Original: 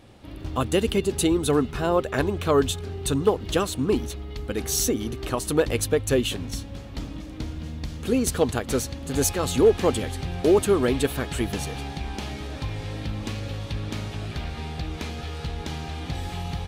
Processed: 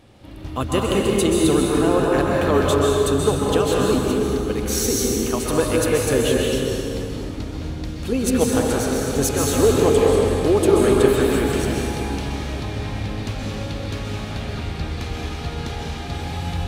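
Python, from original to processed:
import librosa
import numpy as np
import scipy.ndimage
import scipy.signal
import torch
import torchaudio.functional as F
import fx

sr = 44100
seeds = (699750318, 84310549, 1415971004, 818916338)

y = fx.rev_plate(x, sr, seeds[0], rt60_s=3.2, hf_ratio=0.6, predelay_ms=115, drr_db=-3.5)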